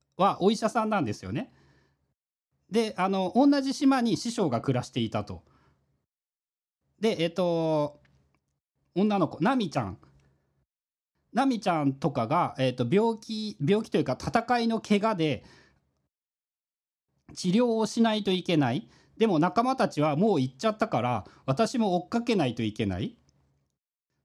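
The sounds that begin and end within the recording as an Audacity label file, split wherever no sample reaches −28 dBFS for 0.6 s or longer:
2.740000	5.340000	sound
7.030000	7.860000	sound
8.970000	9.900000	sound
11.360000	15.350000	sound
17.400000	23.070000	sound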